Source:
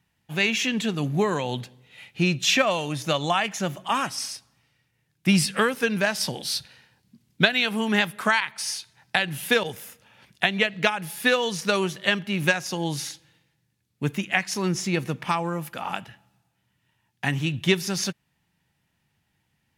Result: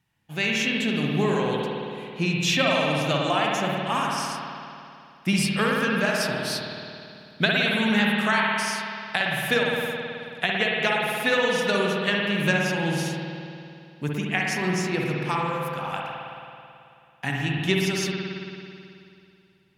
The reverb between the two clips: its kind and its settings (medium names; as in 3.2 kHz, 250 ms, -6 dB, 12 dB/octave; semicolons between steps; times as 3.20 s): spring tank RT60 2.6 s, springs 54 ms, chirp 25 ms, DRR -2.5 dB; trim -3.5 dB